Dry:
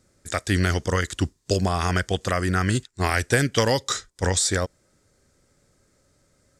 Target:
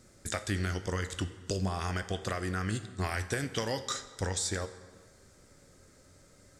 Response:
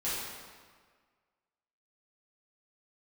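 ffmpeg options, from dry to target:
-filter_complex "[0:a]acompressor=threshold=-40dB:ratio=3,flanger=delay=8.4:depth=3.4:regen=74:speed=0.42:shape=triangular,asplit=2[a][b];[1:a]atrim=start_sample=2205[c];[b][c]afir=irnorm=-1:irlink=0,volume=-16.5dB[d];[a][d]amix=inputs=2:normalize=0,volume=8dB"

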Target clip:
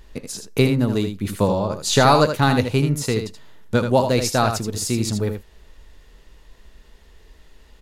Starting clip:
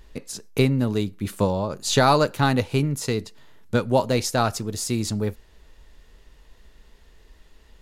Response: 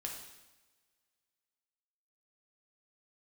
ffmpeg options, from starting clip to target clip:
-af "aecho=1:1:79:0.422,volume=2.5dB"

